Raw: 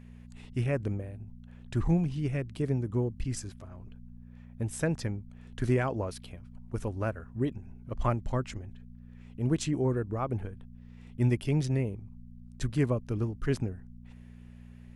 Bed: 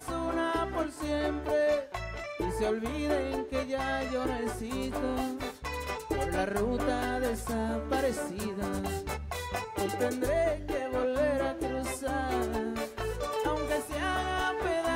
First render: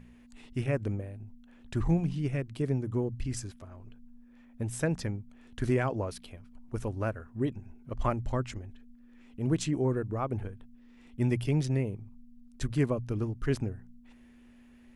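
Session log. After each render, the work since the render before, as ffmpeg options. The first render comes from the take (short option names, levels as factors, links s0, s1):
-af "bandreject=f=60:t=h:w=4,bandreject=f=120:t=h:w=4,bandreject=f=180:t=h:w=4"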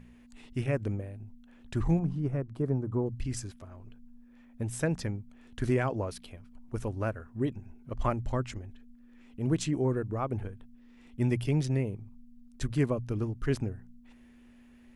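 -filter_complex "[0:a]asettb=1/sr,asplit=3[s0][s1][s2];[s0]atrim=end=1.994[s3];[s1]atrim=start=1.99:end=3.06,asetpts=PTS-STARTPTS,afade=t=in:d=0.004:c=qsin,afade=t=out:st=1.066:d=0.004:c=qsin,highshelf=f=1700:t=q:w=1.5:g=-11[s4];[s2]atrim=start=3.056[s5];[s3][s4]acrossfade=d=0.004:c1=hsin:c2=qsin[s6];[s6][s5]acrossfade=d=0.004:c1=qsin:c2=hsin"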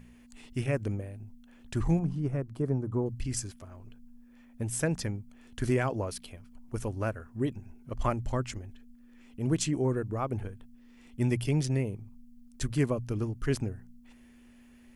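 -af "highshelf=f=4600:g=8,bandreject=f=3800:w=19"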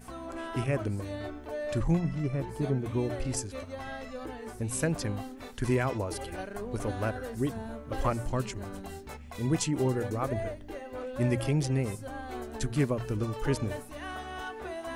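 -filter_complex "[1:a]volume=0.376[s0];[0:a][s0]amix=inputs=2:normalize=0"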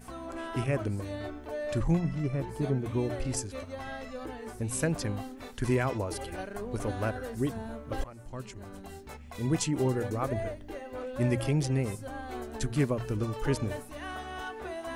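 -filter_complex "[0:a]asplit=2[s0][s1];[s0]atrim=end=8.04,asetpts=PTS-STARTPTS,afade=t=out:st=8.036:d=0.004:c=hsin:silence=0.0707946[s2];[s1]atrim=start=8.04,asetpts=PTS-STARTPTS,afade=t=in:d=1.83:c=qsin:silence=0.0707946[s3];[s2][s3]concat=n=2:v=0:a=1"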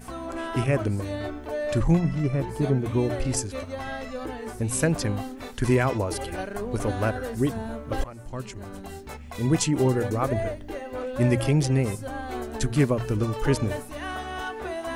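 -af "volume=2"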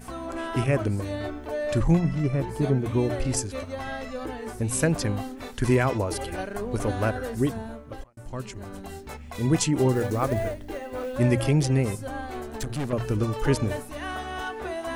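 -filter_complex "[0:a]asettb=1/sr,asplit=3[s0][s1][s2];[s0]atrim=end=9.924[s3];[s1]atrim=start=9.92:end=11.17,asetpts=PTS-STARTPTS,afade=t=in:d=0.004:c=qsin,afade=t=out:st=1.246:d=0.004:c=qsin,acrusher=bits=6:mode=log:mix=0:aa=0.000001[s4];[s2]atrim=start=11.166[s5];[s3][s4]acrossfade=d=0.004:c1=hsin:c2=qsin[s6];[s6][s5]acrossfade=d=0.004:c1=qsin:c2=hsin,asettb=1/sr,asplit=3[s7][s8][s9];[s7]atrim=end=12.264[s10];[s8]atrim=start=12.26:end=12.93,asetpts=PTS-STARTPTS,afade=t=in:d=0.004:c=qsin,afade=t=out:st=0.666:d=0.004:c=qsin,aeval=exprs='(tanh(20*val(0)+0.45)-tanh(0.45))/20':c=same[s11];[s9]atrim=start=12.926[s12];[s10][s11]acrossfade=d=0.004:c1=hsin:c2=qsin[s13];[s13][s12]acrossfade=d=0.004:c1=qsin:c2=hsin,asplit=2[s14][s15];[s14]atrim=end=8.17,asetpts=PTS-STARTPTS,afade=t=out:st=7.43:d=0.74[s16];[s15]atrim=start=8.17,asetpts=PTS-STARTPTS,afade=t=in:d=0.004:c=hsin[s17];[s16][s17]concat=n=2:v=0:a=1"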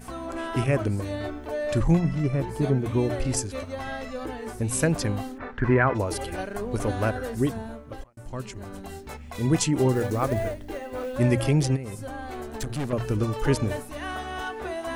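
-filter_complex "[0:a]asplit=3[s0][s1][s2];[s0]afade=t=out:st=5.37:d=0.02[s3];[s1]lowpass=f=1600:t=q:w=2.1,afade=t=in:st=5.37:d=0.02,afade=t=out:st=5.94:d=0.02[s4];[s2]afade=t=in:st=5.94:d=0.02[s5];[s3][s4][s5]amix=inputs=3:normalize=0,asplit=3[s6][s7][s8];[s6]afade=t=out:st=11.75:d=0.02[s9];[s7]acompressor=threshold=0.0316:ratio=6:attack=3.2:release=140:knee=1:detection=peak,afade=t=in:st=11.75:d=0.02,afade=t=out:st=12.38:d=0.02[s10];[s8]afade=t=in:st=12.38:d=0.02[s11];[s9][s10][s11]amix=inputs=3:normalize=0"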